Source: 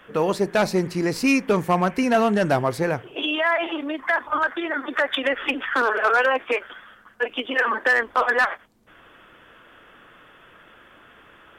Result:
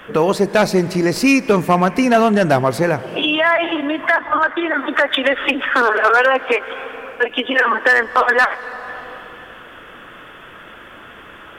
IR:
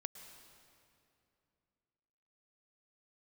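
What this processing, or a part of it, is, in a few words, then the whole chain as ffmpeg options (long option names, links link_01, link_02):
compressed reverb return: -filter_complex "[0:a]asplit=2[link_01][link_02];[1:a]atrim=start_sample=2205[link_03];[link_02][link_03]afir=irnorm=-1:irlink=0,acompressor=threshold=-35dB:ratio=6,volume=6dB[link_04];[link_01][link_04]amix=inputs=2:normalize=0,asettb=1/sr,asplit=3[link_05][link_06][link_07];[link_05]atrim=end=4.184[link_08];[link_06]atrim=start=4.18:end=4.75,asetpts=PTS-STARTPTS,afade=type=in:duration=0.004:curve=qsin,afade=type=out:start_time=0.566:duration=0.004:curve=qsin,highshelf=frequency=7300:gain=-12[link_09];[link_07]atrim=start=4.746[link_10];[link_08][link_09]acrossfade=duration=0.004:curve1=hsin:curve2=qsin[link_11];[link_11][link_10]acrossfade=duration=0.004:curve1=qsin:curve2=hsin,volume=4dB"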